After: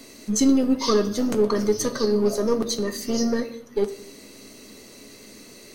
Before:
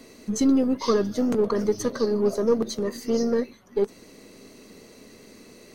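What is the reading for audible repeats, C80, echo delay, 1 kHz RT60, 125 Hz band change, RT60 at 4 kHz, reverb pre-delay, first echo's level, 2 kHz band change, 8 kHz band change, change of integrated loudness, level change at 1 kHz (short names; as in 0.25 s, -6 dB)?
none, 17.0 dB, none, 0.65 s, +2.0 dB, 0.55 s, 3 ms, none, +3.5 dB, +7.5 dB, +1.5 dB, +2.0 dB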